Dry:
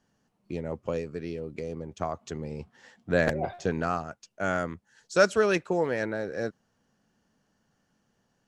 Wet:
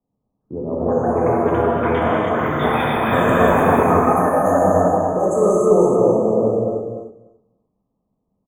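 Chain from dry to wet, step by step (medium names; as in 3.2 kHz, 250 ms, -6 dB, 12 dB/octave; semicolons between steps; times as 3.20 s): level-controlled noise filter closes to 820 Hz, open at -23.5 dBFS; in parallel at -4 dB: overload inside the chain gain 21 dB; on the sum: FFT band-reject 1.3–6.2 kHz; compression, threshold -23 dBFS, peak gain reduction 9 dB; ever faster or slower copies 411 ms, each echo +6 st, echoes 3; on a send: feedback delay 294 ms, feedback 17%, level -4.5 dB; on the sum: gated-style reverb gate 350 ms flat, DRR -5.5 dB; three bands expanded up and down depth 40%; trim +4.5 dB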